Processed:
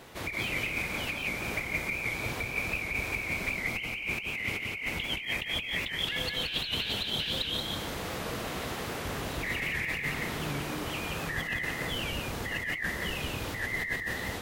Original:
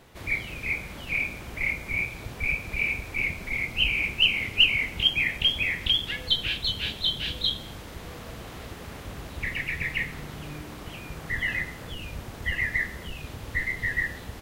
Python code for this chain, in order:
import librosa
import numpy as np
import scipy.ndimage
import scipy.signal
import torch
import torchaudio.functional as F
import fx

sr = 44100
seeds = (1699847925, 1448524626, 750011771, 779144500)

y = fx.low_shelf(x, sr, hz=120.0, db=-10.5)
y = fx.over_compress(y, sr, threshold_db=-35.0, ratio=-1.0)
y = y + 10.0 ** (-3.5 / 20.0) * np.pad(y, (int(175 * sr / 1000.0), 0))[:len(y)]
y = fx.record_warp(y, sr, rpm=78.0, depth_cents=100.0)